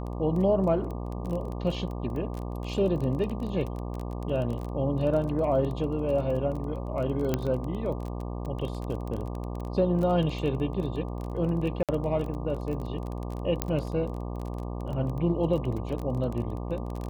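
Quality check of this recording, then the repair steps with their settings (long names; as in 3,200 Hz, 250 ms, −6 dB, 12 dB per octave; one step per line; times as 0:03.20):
mains buzz 60 Hz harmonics 20 −34 dBFS
surface crackle 20 per second −32 dBFS
0:07.34: click −12 dBFS
0:11.83–0:11.89: drop-out 57 ms
0:13.62: click −10 dBFS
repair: click removal
hum removal 60 Hz, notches 20
repair the gap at 0:11.83, 57 ms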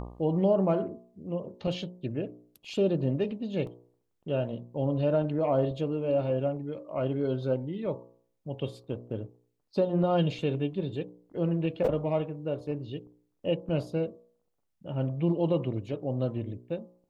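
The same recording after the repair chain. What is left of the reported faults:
none of them is left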